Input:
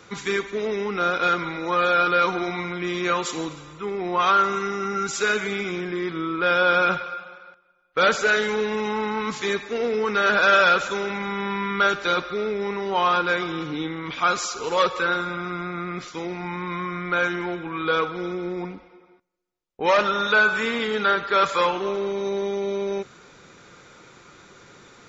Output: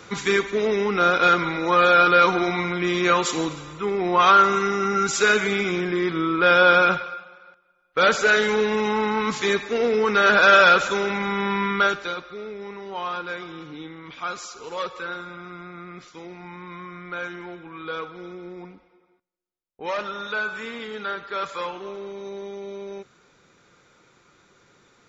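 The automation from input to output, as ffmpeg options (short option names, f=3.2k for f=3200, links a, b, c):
-af "volume=11.5dB,afade=t=out:st=6.67:d=0.62:silence=0.375837,afade=t=in:st=7.29:d=1.24:silence=0.421697,afade=t=out:st=11.65:d=0.5:silence=0.251189"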